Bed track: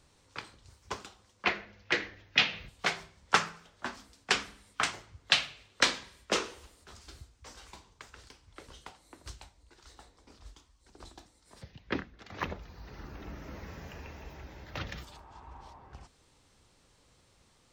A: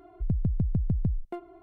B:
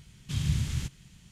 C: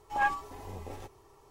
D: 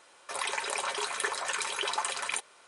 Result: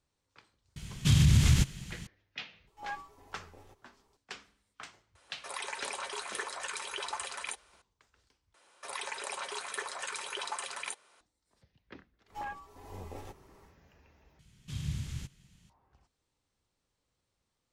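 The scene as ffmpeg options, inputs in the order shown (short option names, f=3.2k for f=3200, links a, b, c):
-filter_complex "[2:a]asplit=2[a][b];[3:a]asplit=2[c][d];[4:a]asplit=2[e][f];[0:a]volume=-17.5dB[g];[a]alimiter=level_in=23dB:limit=-1dB:release=50:level=0:latency=1[h];[d]acompressor=threshold=-35dB:ratio=12:attack=18:release=468:knee=1:detection=rms[i];[g]asplit=3[j][k][l];[j]atrim=end=8.544[m];[f]atrim=end=2.67,asetpts=PTS-STARTPTS,volume=-6.5dB[n];[k]atrim=start=11.206:end=14.394[o];[b]atrim=end=1.31,asetpts=PTS-STARTPTS,volume=-8dB[p];[l]atrim=start=15.696[q];[h]atrim=end=1.31,asetpts=PTS-STARTPTS,volume=-13dB,afade=t=in:d=0.004:c=hsin,afade=t=out:st=1.306:d=0.004:c=hsin,adelay=760[r];[c]atrim=end=1.5,asetpts=PTS-STARTPTS,volume=-12.5dB,afade=t=in:d=0.004:c=hsin,afade=t=out:st=1.496:d=0.004:c=hsin,adelay=2670[s];[e]atrim=end=2.67,asetpts=PTS-STARTPTS,volume=-6.5dB,afade=t=in:d=0.004:c=hsin,afade=t=out:st=2.666:d=0.004:c=hsin,adelay=5150[t];[i]atrim=end=1.5,asetpts=PTS-STARTPTS,volume=-2dB,afade=t=in:d=0.1,afade=t=out:st=1.4:d=0.1,adelay=12250[u];[m][n]acrossfade=d=0.004:c1=hsin:c2=hsin[v];[v][o]acrossfade=d=0.004:c1=hsin:c2=hsin[w];[w][p]acrossfade=d=0.004:c1=hsin:c2=hsin[x];[x][q]acrossfade=d=0.004:c1=hsin:c2=hsin[y];[y][r][s][t][u]amix=inputs=5:normalize=0"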